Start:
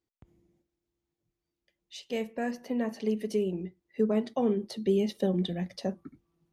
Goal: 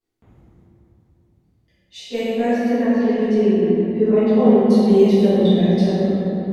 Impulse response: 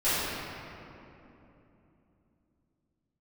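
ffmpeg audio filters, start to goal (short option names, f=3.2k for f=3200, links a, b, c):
-filter_complex "[0:a]asettb=1/sr,asplit=3[a][b][c];[a]atrim=end=2.724[d];[b]atrim=start=2.72:end=4.41,asetpts=PTS-STARTPTS,afade=t=in:d=0.004:c=qsin,afade=t=out:st=1.686:d=0.004:c=qsin,lowpass=4.2k[e];[c]atrim=start=4.406[f];[d][e]acrossfade=d=0.004:c1=hsin:c2=qsin[g];[g][f]acrossfade=d=0.004:c1=qsin:c2=hsin[h];[1:a]atrim=start_sample=2205,asetrate=34398,aresample=44100[i];[h][i]afir=irnorm=-1:irlink=0,volume=-3.5dB"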